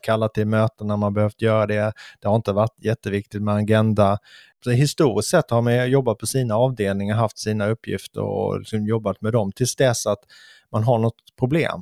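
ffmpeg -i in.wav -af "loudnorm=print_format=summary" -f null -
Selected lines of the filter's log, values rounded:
Input Integrated:    -21.5 LUFS
Input True Peak:      -3.0 dBTP
Input LRA:             2.6 LU
Input Threshold:     -31.7 LUFS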